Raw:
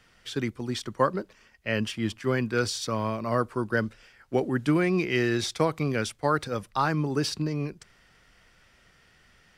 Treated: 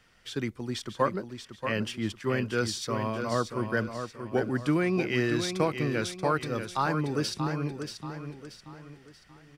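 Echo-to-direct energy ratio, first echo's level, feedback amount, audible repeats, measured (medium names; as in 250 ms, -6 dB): -7.5 dB, -8.0 dB, 39%, 4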